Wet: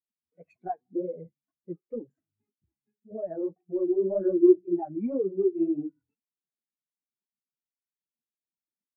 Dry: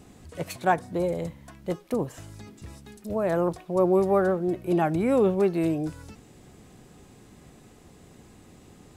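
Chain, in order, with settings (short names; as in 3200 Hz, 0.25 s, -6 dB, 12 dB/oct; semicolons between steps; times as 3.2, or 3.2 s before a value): reverb RT60 0.65 s, pre-delay 3 ms, DRR 18.5 dB; compressor 6:1, threshold -22 dBFS, peak gain reduction 8 dB; 3.98–4.66 ripple EQ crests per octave 1.3, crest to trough 12 dB; sample leveller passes 2; flange 1.9 Hz, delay 0.3 ms, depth 9.3 ms, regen -4%; spectral expander 2.5:1; gain +3 dB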